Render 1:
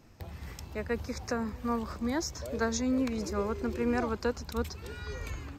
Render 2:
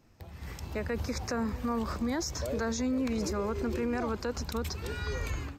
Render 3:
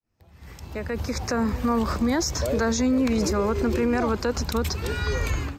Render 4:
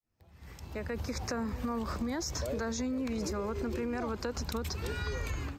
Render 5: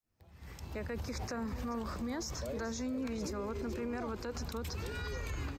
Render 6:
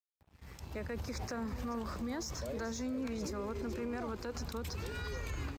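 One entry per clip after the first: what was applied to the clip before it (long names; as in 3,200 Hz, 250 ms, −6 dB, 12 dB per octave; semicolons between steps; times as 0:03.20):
brickwall limiter −29.5 dBFS, peak gain reduction 10.5 dB; automatic gain control gain up to 11 dB; level −5.5 dB
fade in at the beginning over 1.57 s; level +8.5 dB
downward compressor, threshold −25 dBFS, peak gain reduction 6.5 dB; floating-point word with a short mantissa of 8 bits; level −6 dB
brickwall limiter −31 dBFS, peak gain reduction 7.5 dB; single-tap delay 432 ms −14 dB
dead-zone distortion −58.5 dBFS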